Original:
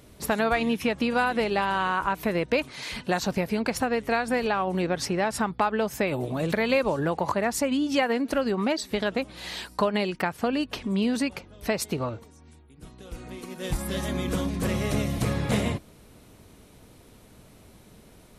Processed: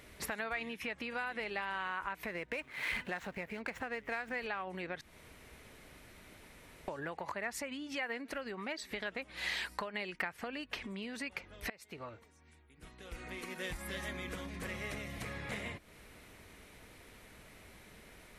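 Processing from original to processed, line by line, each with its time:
0:02.25–0:04.36: running median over 9 samples
0:05.01–0:06.88: fill with room tone
0:11.70–0:13.50: fade in, from −20.5 dB
whole clip: downward compressor 6 to 1, threshold −35 dBFS; octave-band graphic EQ 125/250/2,000 Hz −5/−3/+11 dB; level −4 dB

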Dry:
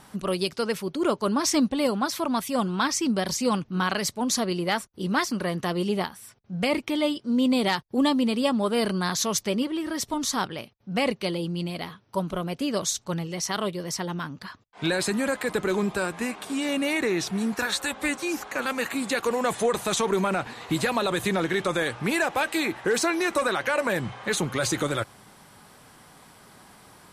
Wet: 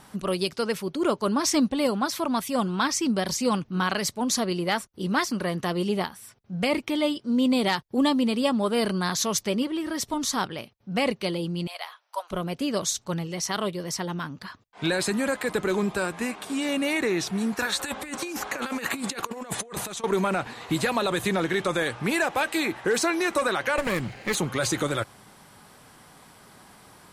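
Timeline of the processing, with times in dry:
0:11.67–0:12.31: Butterworth high-pass 630 Hz
0:17.79–0:20.04: compressor whose output falls as the input rises −31 dBFS, ratio −0.5
0:23.78–0:24.35: lower of the sound and its delayed copy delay 0.43 ms

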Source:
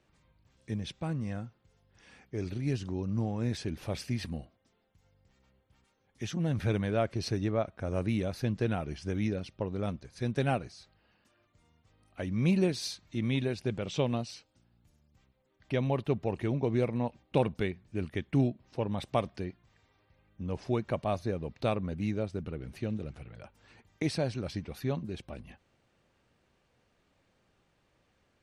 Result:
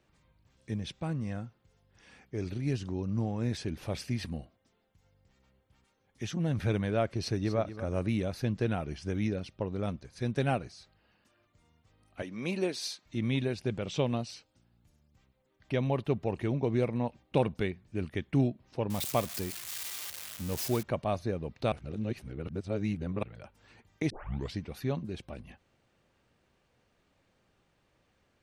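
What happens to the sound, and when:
0:07.19–0:07.60: delay throw 240 ms, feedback 15%, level −12 dB
0:12.22–0:13.06: high-pass filter 320 Hz
0:18.90–0:20.83: spike at every zero crossing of −26.5 dBFS
0:21.72–0:23.23: reverse
0:24.10: tape start 0.44 s

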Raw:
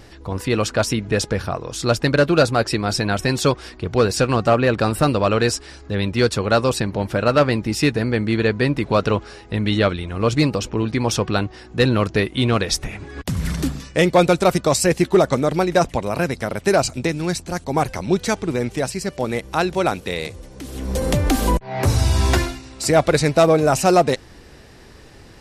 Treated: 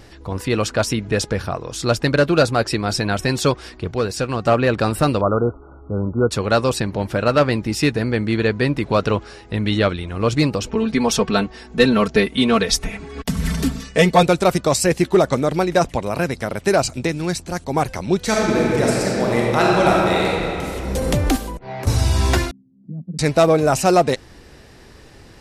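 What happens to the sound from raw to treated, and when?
0:03.91–0:04.45: clip gain −4.5 dB
0:05.21–0:06.31: linear-phase brick-wall low-pass 1,500 Hz
0:10.67–0:14.23: comb filter 4.5 ms, depth 89%
0:18.22–0:20.66: thrown reverb, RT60 2.8 s, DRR −4.5 dB
0:21.36–0:21.87: downward compressor 10 to 1, threshold −25 dBFS
0:22.51–0:23.19: flat-topped band-pass 190 Hz, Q 3.4

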